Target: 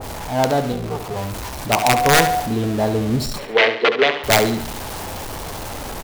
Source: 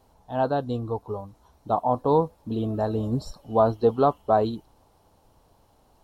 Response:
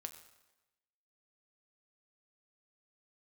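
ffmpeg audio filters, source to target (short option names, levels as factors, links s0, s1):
-filter_complex "[0:a]aeval=exprs='val(0)+0.5*0.0376*sgn(val(0))':c=same,asplit=3[s0][s1][s2];[s0]afade=t=out:st=0.71:d=0.02[s3];[s1]tremolo=f=290:d=1,afade=t=in:st=0.71:d=0.02,afade=t=out:st=1.15:d=0.02[s4];[s2]afade=t=in:st=1.15:d=0.02[s5];[s3][s4][s5]amix=inputs=3:normalize=0,aeval=exprs='(mod(4.22*val(0)+1,2)-1)/4.22':c=same,asettb=1/sr,asplit=3[s6][s7][s8];[s6]atrim=end=1.824[s9];[s7]atrim=start=1.82:end=2.4,asetpts=PTS-STARTPTS,afade=t=in:d=0.004:c=qsin,afade=t=out:st=0.576:d=0.004:c=qsin,aeval=exprs='val(0)+0.0708*sin(2*PI*730*n/s)':c=same[s10];[s8]atrim=start=2.396[s11];[s9][s10]acrossfade=d=0.004:c1=hsin:c2=qsin[s12];[s12][s11]acrossfade=d=0.004:c1=qsin:c2=hsin,asettb=1/sr,asplit=3[s13][s14][s15];[s13]atrim=end=3.384[s16];[s14]atrim=start=3.38:end=4.24,asetpts=PTS-STARTPTS,afade=t=in:d=0.004:c=qsin,afade=t=out:st=0.856:d=0.004:c=qsin,highpass=440,equalizer=f=440:t=q:w=4:g=9,equalizer=f=800:t=q:w=4:g=-4,equalizer=f=1300:t=q:w=4:g=-5,equalizer=f=2000:t=q:w=4:g=4,lowpass=f=3500:w=0.5412,lowpass=f=3500:w=1.3066[s17];[s15]atrim=start=4.236[s18];[s16][s17]acrossfade=d=0.004:c1=hsin:c2=qsin[s19];[s19][s18]acrossfade=d=0.004:c1=qsin:c2=hsin,aecho=1:1:70|140|210|280|350:0.316|0.139|0.0612|0.0269|0.0119,adynamicequalizer=threshold=0.0178:dfrequency=1700:dqfactor=0.7:tfrequency=1700:tqfactor=0.7:attack=5:release=100:ratio=0.375:range=1.5:mode=boostabove:tftype=highshelf,volume=1.58"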